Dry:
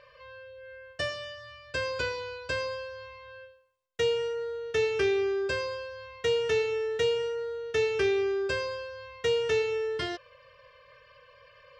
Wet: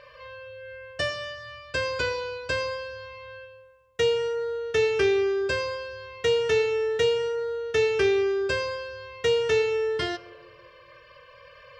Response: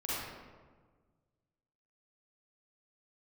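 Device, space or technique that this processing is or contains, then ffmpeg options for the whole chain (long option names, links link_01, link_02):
ducked reverb: -filter_complex "[0:a]asplit=3[link_01][link_02][link_03];[1:a]atrim=start_sample=2205[link_04];[link_02][link_04]afir=irnorm=-1:irlink=0[link_05];[link_03]apad=whole_len=520134[link_06];[link_05][link_06]sidechaincompress=threshold=-46dB:ratio=4:attack=16:release=1450,volume=-6.5dB[link_07];[link_01][link_07]amix=inputs=2:normalize=0,volume=3.5dB"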